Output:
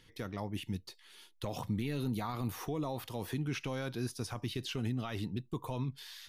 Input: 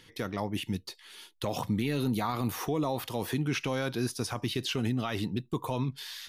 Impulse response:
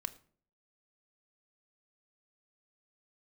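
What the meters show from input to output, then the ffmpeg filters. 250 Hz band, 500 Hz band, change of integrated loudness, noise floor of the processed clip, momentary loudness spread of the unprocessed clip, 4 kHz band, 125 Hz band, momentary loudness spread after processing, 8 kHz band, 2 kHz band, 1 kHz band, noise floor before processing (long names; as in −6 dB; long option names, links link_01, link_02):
−6.0 dB, −7.0 dB, −6.0 dB, −63 dBFS, 6 LU, −7.5 dB, −4.0 dB, 6 LU, −7.5 dB, −7.5 dB, −7.5 dB, −59 dBFS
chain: -af "lowshelf=frequency=85:gain=11.5,volume=-7.5dB"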